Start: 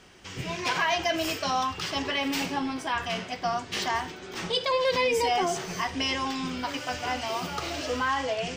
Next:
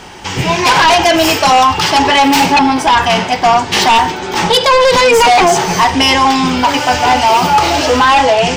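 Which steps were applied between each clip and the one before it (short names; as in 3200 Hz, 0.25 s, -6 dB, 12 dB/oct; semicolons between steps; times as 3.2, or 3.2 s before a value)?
bell 870 Hz +14.5 dB 0.24 oct; sine folder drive 11 dB, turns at -9 dBFS; gain +4.5 dB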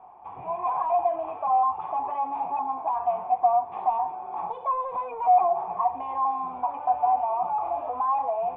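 compressor 2.5:1, threshold -11 dBFS, peak gain reduction 3.5 dB; vocal tract filter a; gain -4.5 dB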